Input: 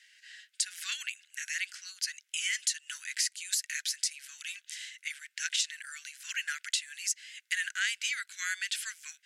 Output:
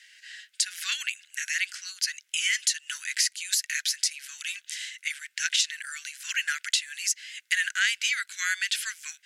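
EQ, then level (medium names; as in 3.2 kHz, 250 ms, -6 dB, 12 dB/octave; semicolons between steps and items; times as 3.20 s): dynamic bell 8.3 kHz, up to -4 dB, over -46 dBFS, Q 2.4; +6.5 dB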